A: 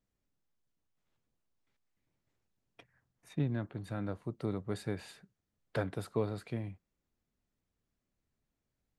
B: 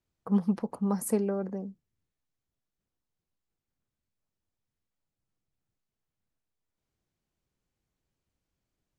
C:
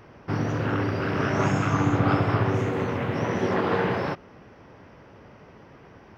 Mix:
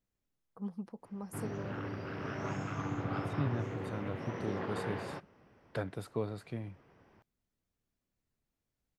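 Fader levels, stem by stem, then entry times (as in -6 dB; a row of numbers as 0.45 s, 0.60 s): -2.5 dB, -14.5 dB, -14.5 dB; 0.00 s, 0.30 s, 1.05 s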